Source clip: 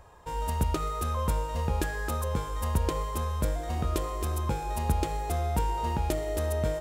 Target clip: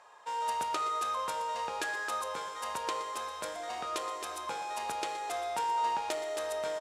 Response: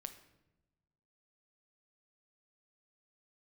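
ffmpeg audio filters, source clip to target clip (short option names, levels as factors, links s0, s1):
-filter_complex "[0:a]highpass=790,lowpass=7500,aecho=1:1:120:0.188,asplit=2[s0][s1];[1:a]atrim=start_sample=2205[s2];[s1][s2]afir=irnorm=-1:irlink=0,volume=3.16[s3];[s0][s3]amix=inputs=2:normalize=0,volume=0.447"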